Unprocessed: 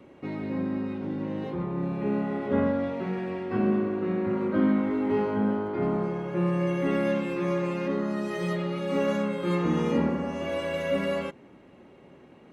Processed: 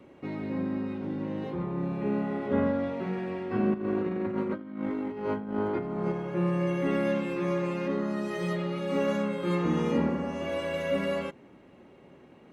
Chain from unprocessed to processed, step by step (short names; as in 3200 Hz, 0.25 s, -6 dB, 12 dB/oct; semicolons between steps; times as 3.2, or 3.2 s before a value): 3.74–6.12 negative-ratio compressor -29 dBFS, ratio -0.5; gain -1.5 dB